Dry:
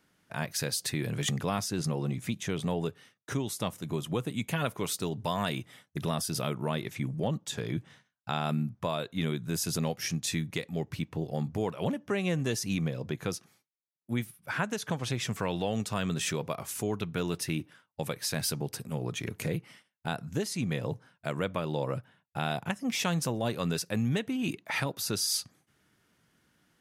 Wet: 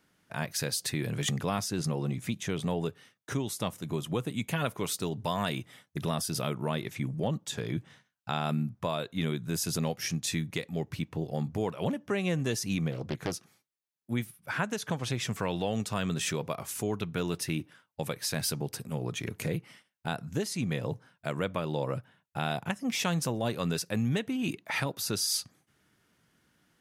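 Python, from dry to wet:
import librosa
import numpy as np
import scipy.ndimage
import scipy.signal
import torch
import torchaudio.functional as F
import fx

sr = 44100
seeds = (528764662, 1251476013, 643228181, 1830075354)

y = fx.doppler_dist(x, sr, depth_ms=0.62, at=(12.91, 13.32))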